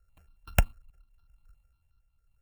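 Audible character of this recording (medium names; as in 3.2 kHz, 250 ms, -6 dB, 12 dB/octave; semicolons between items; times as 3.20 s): a buzz of ramps at a fixed pitch in blocks of 32 samples; tremolo triangle 0.83 Hz, depth 60%; notches that jump at a steady rate 11 Hz 920–2100 Hz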